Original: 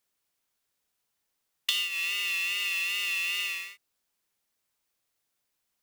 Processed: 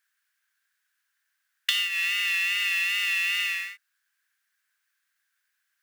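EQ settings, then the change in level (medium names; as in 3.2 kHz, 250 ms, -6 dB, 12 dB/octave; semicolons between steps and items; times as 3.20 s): resonant high-pass 1.6 kHz, resonance Q 8.5; 0.0 dB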